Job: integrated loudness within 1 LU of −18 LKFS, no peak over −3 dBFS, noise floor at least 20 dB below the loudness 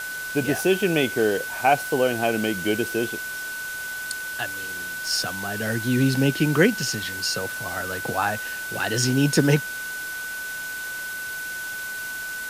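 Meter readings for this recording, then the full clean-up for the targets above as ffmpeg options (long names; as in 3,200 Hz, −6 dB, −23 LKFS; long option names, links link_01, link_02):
interfering tone 1,500 Hz; level of the tone −30 dBFS; background noise floor −32 dBFS; target noise floor −45 dBFS; integrated loudness −24.5 LKFS; sample peak −6.0 dBFS; target loudness −18.0 LKFS
→ -af "bandreject=frequency=1500:width=30"
-af "afftdn=noise_reduction=13:noise_floor=-32"
-af "volume=6.5dB,alimiter=limit=-3dB:level=0:latency=1"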